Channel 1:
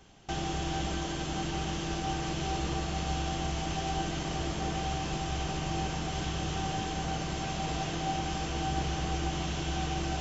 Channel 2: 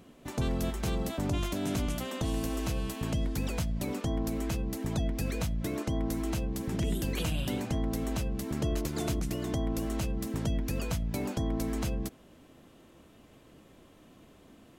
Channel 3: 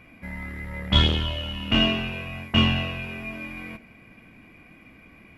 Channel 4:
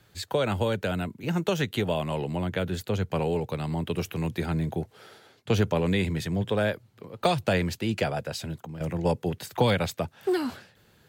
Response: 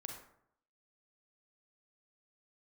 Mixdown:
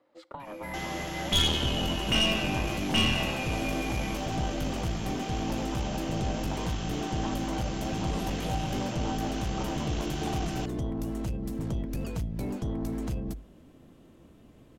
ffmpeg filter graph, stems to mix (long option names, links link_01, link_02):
-filter_complex "[0:a]highpass=170,adelay=450,volume=-0.5dB[link_01];[1:a]lowshelf=frequency=450:gain=10,bandreject=frequency=50:width_type=h:width=6,bandreject=frequency=100:width_type=h:width=6,asoftclip=type=tanh:threshold=-20.5dB,adelay=1250,volume=-3.5dB[link_02];[2:a]bass=frequency=250:gain=-4,treble=frequency=4000:gain=12,adelay=400,volume=-1.5dB[link_03];[3:a]acompressor=threshold=-29dB:ratio=6,aeval=exprs='val(0)*sin(2*PI*420*n/s)':channel_layout=same,bandpass=frequency=580:width_type=q:width=0.75:csg=0,volume=-2.5dB,asplit=2[link_04][link_05];[link_05]volume=-13.5dB[link_06];[4:a]atrim=start_sample=2205[link_07];[link_06][link_07]afir=irnorm=-1:irlink=0[link_08];[link_01][link_02][link_03][link_04][link_08]amix=inputs=5:normalize=0,aeval=exprs='(tanh(8.91*val(0)+0.4)-tanh(0.4))/8.91':channel_layout=same"